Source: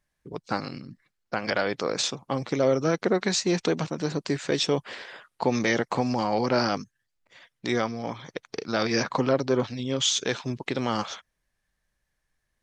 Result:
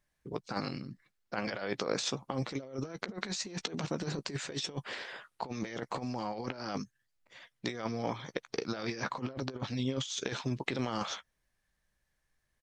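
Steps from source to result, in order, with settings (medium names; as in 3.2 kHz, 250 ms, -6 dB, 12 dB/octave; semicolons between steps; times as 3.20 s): compressor with a negative ratio -29 dBFS, ratio -0.5; doubling 15 ms -13.5 dB; trim -6 dB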